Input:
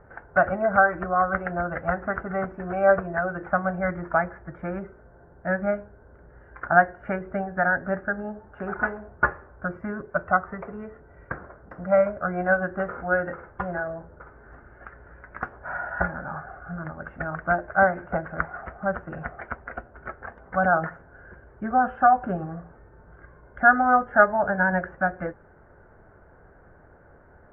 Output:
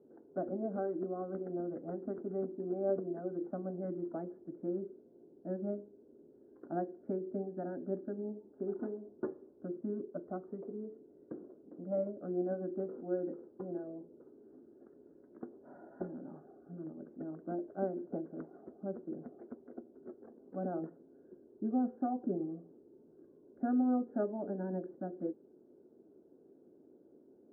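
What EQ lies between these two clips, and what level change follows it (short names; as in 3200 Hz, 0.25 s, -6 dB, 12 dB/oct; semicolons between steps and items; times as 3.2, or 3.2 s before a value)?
Butterworth band-pass 310 Hz, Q 1.9; +1.0 dB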